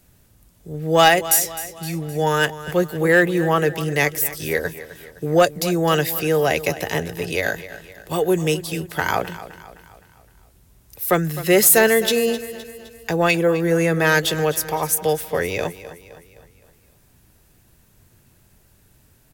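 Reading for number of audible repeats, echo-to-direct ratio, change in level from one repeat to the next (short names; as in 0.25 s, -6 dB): 4, -14.0 dB, -6.0 dB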